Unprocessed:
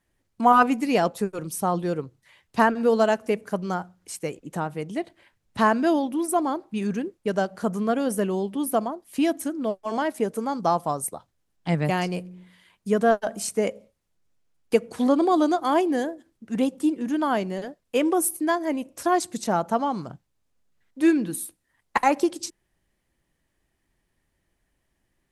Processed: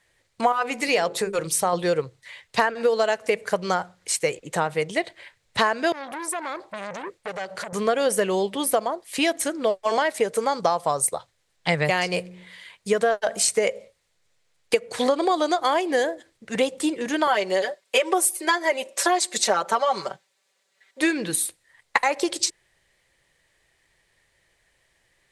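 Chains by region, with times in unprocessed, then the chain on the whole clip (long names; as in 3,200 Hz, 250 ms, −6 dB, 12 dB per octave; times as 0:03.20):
0:00.52–0:01.73: mains-hum notches 50/100/150/200/250/300/350/400/450 Hz + downward compressor 1.5 to 1, threshold −26 dBFS
0:05.92–0:07.73: downward compressor 12 to 1, threshold −30 dBFS + saturating transformer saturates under 1,500 Hz
0:17.27–0:21.01: high-pass filter 330 Hz + comb filter 5.2 ms, depth 94%
whole clip: octave-band graphic EQ 125/250/500/1,000/2,000/4,000/8,000 Hz +5/−7/+11/+4/+12/+11/+11 dB; downward compressor 10 to 1, threshold −16 dBFS; level −1 dB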